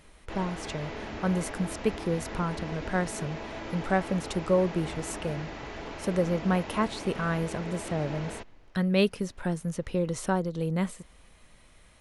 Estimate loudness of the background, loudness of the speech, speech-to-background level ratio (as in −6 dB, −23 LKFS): −39.0 LKFS, −30.5 LKFS, 8.5 dB